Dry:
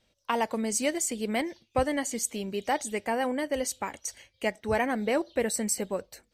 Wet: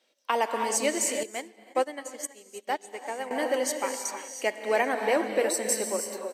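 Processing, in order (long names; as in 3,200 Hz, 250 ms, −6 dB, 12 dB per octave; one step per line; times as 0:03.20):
high-pass filter 300 Hz 24 dB per octave
repeating echo 394 ms, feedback 45%, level −18.5 dB
reverb whose tail is shaped and stops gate 350 ms rising, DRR 4.5 dB
0:01.23–0:03.31: expander for the loud parts 2.5 to 1, over −40 dBFS
level +1.5 dB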